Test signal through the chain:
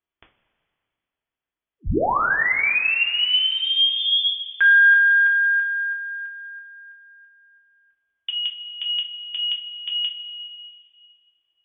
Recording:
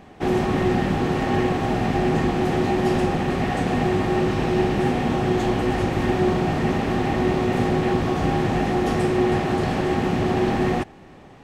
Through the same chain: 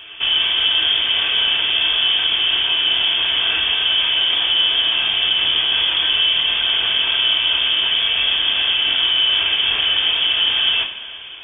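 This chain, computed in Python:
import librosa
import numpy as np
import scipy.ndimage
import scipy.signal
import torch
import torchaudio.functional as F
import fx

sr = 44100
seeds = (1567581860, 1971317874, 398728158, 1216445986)

p1 = fx.notch(x, sr, hz=610.0, q=12.0)
p2 = fx.over_compress(p1, sr, threshold_db=-28.0, ratio=-1.0)
p3 = p1 + F.gain(torch.from_numpy(p2), -1.5).numpy()
p4 = fx.freq_invert(p3, sr, carrier_hz=3400)
p5 = fx.rev_double_slope(p4, sr, seeds[0], early_s=0.28, late_s=2.5, knee_db=-16, drr_db=0.5)
y = F.gain(torch.from_numpy(p5), -2.0).numpy()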